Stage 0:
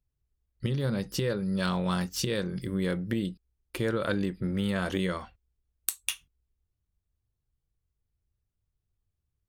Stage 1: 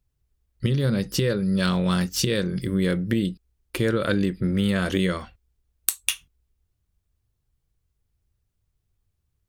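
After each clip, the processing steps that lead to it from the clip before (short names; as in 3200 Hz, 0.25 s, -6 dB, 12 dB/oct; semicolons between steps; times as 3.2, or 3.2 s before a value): dynamic EQ 870 Hz, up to -7 dB, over -48 dBFS, Q 1.5; gain +7 dB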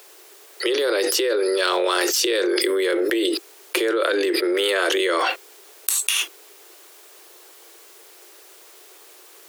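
steep high-pass 330 Hz 96 dB/oct; fast leveller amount 100%; gain -1 dB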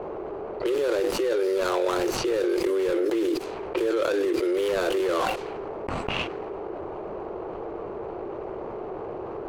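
median filter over 25 samples; low-pass opened by the level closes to 1000 Hz, open at -22.5 dBFS; fast leveller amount 70%; gain -3.5 dB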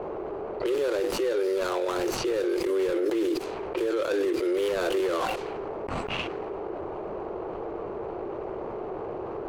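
limiter -19.5 dBFS, peak gain reduction 8.5 dB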